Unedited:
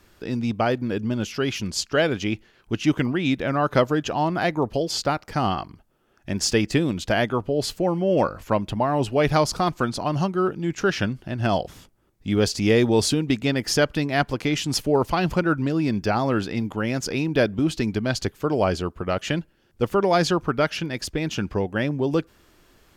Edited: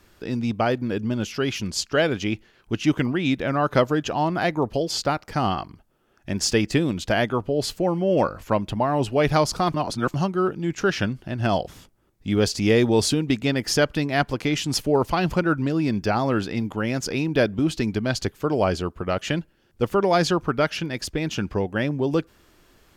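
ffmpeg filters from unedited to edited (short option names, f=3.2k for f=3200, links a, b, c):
-filter_complex "[0:a]asplit=3[a][b][c];[a]atrim=end=9.742[d];[b]atrim=start=9.738:end=10.142,asetpts=PTS-STARTPTS,areverse[e];[c]atrim=start=10.138[f];[d][e]acrossfade=d=0.004:c1=hsin:c2=hsin[g];[g][f]acrossfade=d=0.004:c1=hsin:c2=hsin"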